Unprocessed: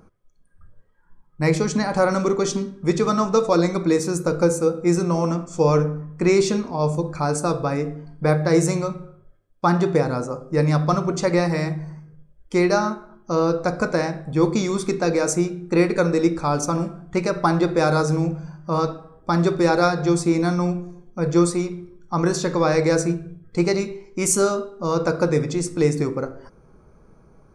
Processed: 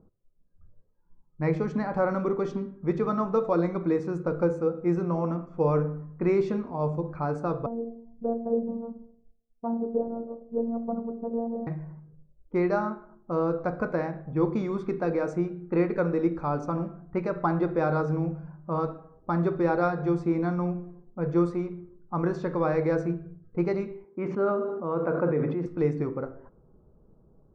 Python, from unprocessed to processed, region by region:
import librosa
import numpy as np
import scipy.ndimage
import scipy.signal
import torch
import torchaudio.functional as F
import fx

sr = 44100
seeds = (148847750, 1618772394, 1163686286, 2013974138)

y = fx.chain(x, sr, fx.cheby2_lowpass(hz=2000.0, order=4, stop_db=50),
    fx.robotise(hz=231.0), at=(7.66, 11.67))
y = fx.chain(y, sr, fx.bandpass_edges(low_hz=170.0, high_hz=2900.0),
    fx.air_absorb(metres=140.0),
    fx.sustainer(db_per_s=32.0), at=(24.04, 25.66))
y = fx.env_lowpass(y, sr, base_hz=600.0, full_db=-18.5)
y = scipy.signal.sosfilt(scipy.signal.butter(2, 1700.0, 'lowpass', fs=sr, output='sos'), y)
y = F.gain(torch.from_numpy(y), -6.5).numpy()